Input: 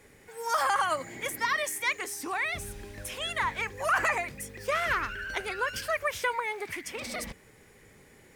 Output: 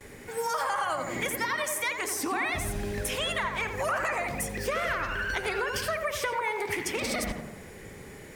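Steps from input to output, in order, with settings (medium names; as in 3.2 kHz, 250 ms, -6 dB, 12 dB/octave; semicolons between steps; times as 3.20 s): gate with hold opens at -51 dBFS; bass shelf 180 Hz +3 dB; in parallel at -1 dB: peak limiter -25.5 dBFS, peak gain reduction 9 dB; on the sum: compression, threshold -31 dBFS, peak gain reduction 11.5 dB; tape echo 86 ms, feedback 70%, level -3.5 dB, low-pass 1.4 kHz; on a send at -19 dB: reverberation RT60 0.20 s, pre-delay 98 ms; on the sum: trim +3 dB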